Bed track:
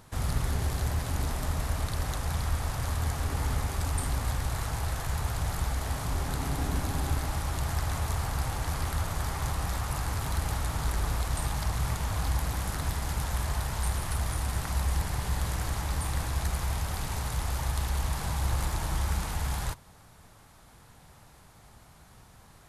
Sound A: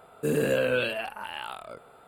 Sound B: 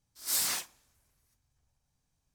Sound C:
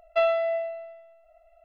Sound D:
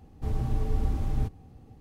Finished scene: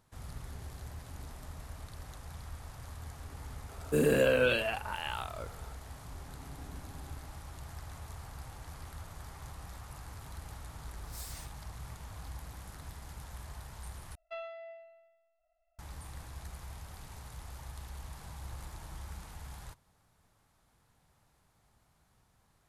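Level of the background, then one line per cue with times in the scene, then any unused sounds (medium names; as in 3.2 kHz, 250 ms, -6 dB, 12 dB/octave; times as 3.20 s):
bed track -15.5 dB
3.69 s: add A -1 dB
10.85 s: add B -17.5 dB
14.15 s: replace with C -16.5 dB + peaking EQ 450 Hz -6.5 dB 1.6 oct
not used: D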